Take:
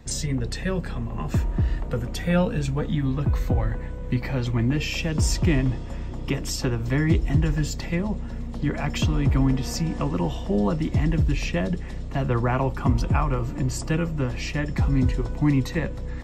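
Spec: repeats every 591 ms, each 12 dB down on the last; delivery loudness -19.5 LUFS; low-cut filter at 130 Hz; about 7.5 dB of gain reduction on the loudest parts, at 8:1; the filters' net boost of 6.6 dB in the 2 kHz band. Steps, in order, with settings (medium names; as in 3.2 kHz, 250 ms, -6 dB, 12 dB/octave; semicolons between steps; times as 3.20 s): high-pass 130 Hz; peaking EQ 2 kHz +8 dB; compression 8:1, threshold -24 dBFS; feedback delay 591 ms, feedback 25%, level -12 dB; trim +10 dB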